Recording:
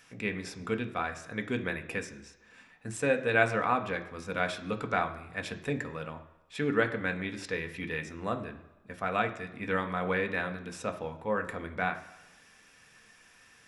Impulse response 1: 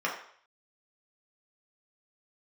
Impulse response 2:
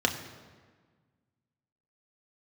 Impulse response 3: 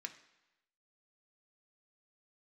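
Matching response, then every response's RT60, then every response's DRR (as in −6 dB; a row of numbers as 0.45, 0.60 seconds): 3; 0.60, 1.5, 1.0 seconds; −4.0, 2.5, 5.0 decibels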